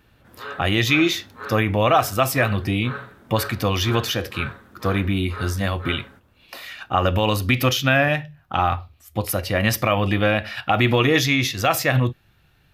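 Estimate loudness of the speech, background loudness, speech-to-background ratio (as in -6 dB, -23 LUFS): -21.0 LUFS, -37.0 LUFS, 16.0 dB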